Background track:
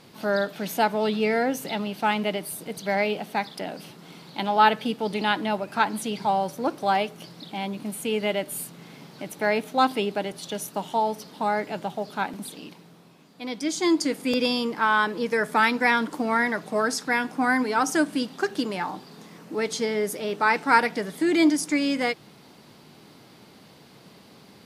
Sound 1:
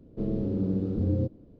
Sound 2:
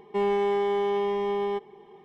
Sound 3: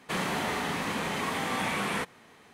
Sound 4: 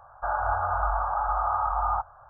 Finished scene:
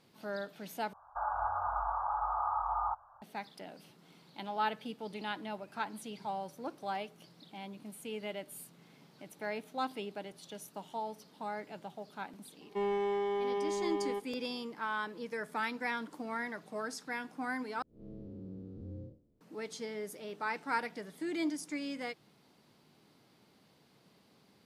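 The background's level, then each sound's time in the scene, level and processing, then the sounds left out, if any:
background track −15 dB
0:00.93: overwrite with 4 −16 dB + parametric band 970 Hz +12 dB 0.87 octaves
0:12.61: mix in 2 −8 dB
0:17.82: overwrite with 1 −17.5 dB + spectrum smeared in time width 129 ms
not used: 3

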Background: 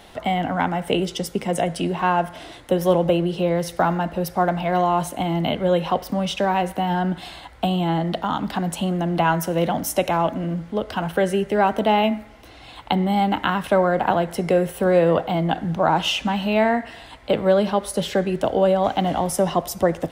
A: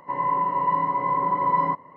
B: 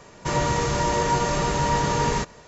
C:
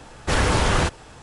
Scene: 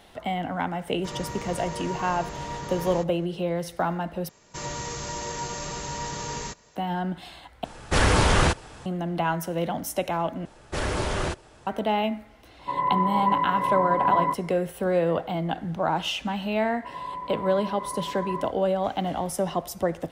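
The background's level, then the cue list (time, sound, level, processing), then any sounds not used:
background −6.5 dB
0:00.79: mix in B −12.5 dB
0:04.29: overwrite with B −12 dB + high-shelf EQ 3,700 Hz +11.5 dB
0:07.64: overwrite with C
0:10.45: overwrite with C −8.5 dB + hollow resonant body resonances 370/600 Hz, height 7 dB
0:12.59: mix in A −1 dB + one half of a high-frequency compander decoder only
0:16.76: mix in A −12 dB

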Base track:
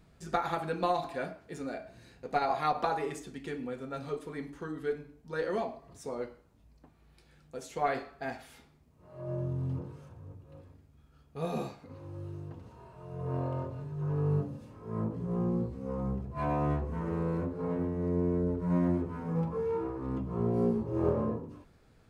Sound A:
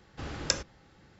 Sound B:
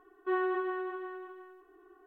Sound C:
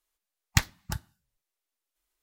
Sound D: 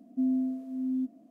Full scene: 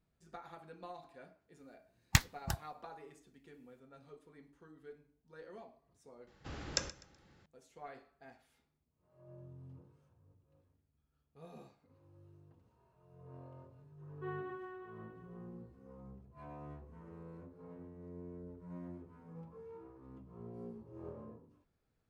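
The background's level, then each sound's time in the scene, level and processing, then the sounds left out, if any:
base track −19.5 dB
0:01.58: mix in C −4 dB
0:06.27: mix in A −7 dB + repeating echo 125 ms, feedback 30%, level −17.5 dB
0:13.95: mix in B −13 dB, fades 0.10 s
not used: D

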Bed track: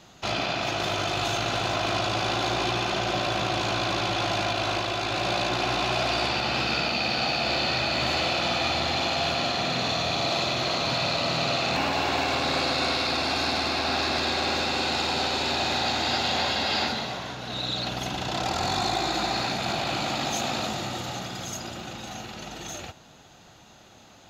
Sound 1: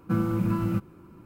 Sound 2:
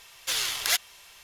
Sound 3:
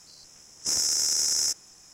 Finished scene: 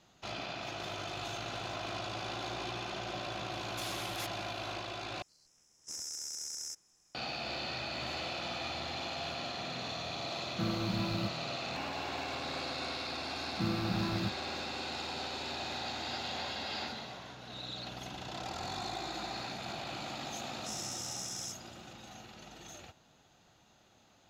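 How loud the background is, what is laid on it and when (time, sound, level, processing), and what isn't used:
bed track −13 dB
0:03.50: mix in 2 −13.5 dB + brickwall limiter −18.5 dBFS
0:05.22: overwrite with 3 −16.5 dB
0:10.49: mix in 1 −9.5 dB
0:13.50: mix in 1 −9 dB
0:20.00: mix in 3 −16.5 dB

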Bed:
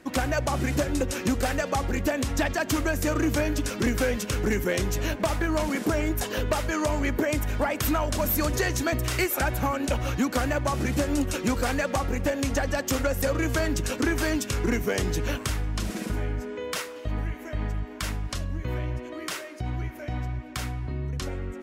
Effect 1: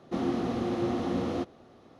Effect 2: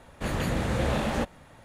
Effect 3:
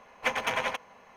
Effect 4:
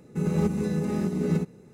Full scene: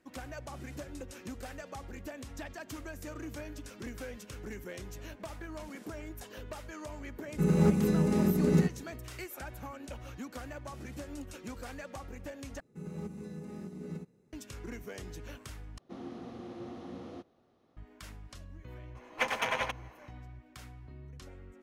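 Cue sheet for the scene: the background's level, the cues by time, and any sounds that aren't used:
bed −17.5 dB
0:07.23: mix in 4
0:12.60: overwrite with 4 −16.5 dB
0:15.78: overwrite with 1 −14.5 dB
0:18.95: mix in 3 −2.5 dB
not used: 2

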